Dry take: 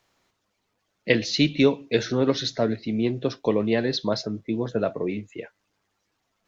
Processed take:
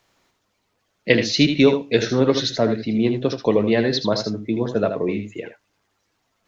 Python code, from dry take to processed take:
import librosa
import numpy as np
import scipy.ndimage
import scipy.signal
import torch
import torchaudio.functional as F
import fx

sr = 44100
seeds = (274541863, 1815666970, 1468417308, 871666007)

y = x + 10.0 ** (-8.0 / 20.0) * np.pad(x, (int(78 * sr / 1000.0), 0))[:len(x)]
y = F.gain(torch.from_numpy(y), 4.0).numpy()